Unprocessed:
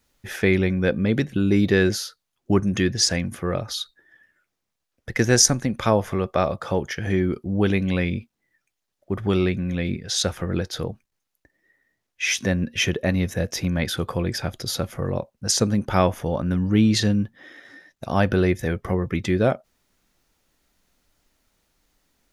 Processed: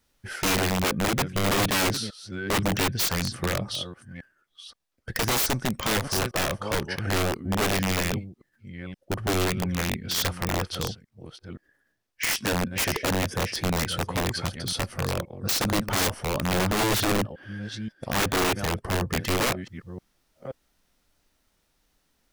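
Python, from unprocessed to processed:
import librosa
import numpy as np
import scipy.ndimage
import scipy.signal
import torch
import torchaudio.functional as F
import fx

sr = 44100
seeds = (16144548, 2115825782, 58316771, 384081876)

y = fx.reverse_delay(x, sr, ms=526, wet_db=-13)
y = (np.mod(10.0 ** (16.5 / 20.0) * y + 1.0, 2.0) - 1.0) / 10.0 ** (16.5 / 20.0)
y = fx.formant_shift(y, sr, semitones=-2)
y = F.gain(torch.from_numpy(y), -2.0).numpy()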